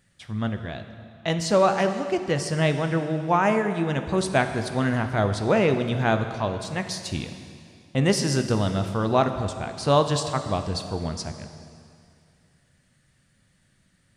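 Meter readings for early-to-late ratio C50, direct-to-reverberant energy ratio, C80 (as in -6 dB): 8.5 dB, 7.5 dB, 9.5 dB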